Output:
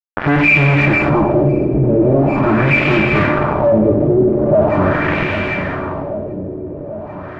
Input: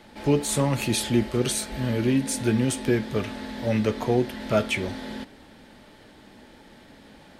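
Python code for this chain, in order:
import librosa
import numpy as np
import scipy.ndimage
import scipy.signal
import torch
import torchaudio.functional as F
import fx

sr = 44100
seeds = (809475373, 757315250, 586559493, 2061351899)

y = fx.freq_compress(x, sr, knee_hz=1700.0, ratio=4.0)
y = scipy.signal.sosfilt(scipy.signal.butter(2, 68.0, 'highpass', fs=sr, output='sos'), y)
y = fx.octave_resonator(y, sr, note='D', decay_s=0.1)
y = fx.fuzz(y, sr, gain_db=49.0, gate_db=-44.0)
y = fx.echo_feedback(y, sr, ms=791, feedback_pct=42, wet_db=-16.5)
y = fx.rev_plate(y, sr, seeds[0], rt60_s=3.5, hf_ratio=0.95, predelay_ms=0, drr_db=3.5)
y = fx.filter_lfo_lowpass(y, sr, shape='sine', hz=0.42, low_hz=400.0, high_hz=2400.0, q=2.3)
y = fx.env_flatten(y, sr, amount_pct=50)
y = y * 10.0 ** (-2.5 / 20.0)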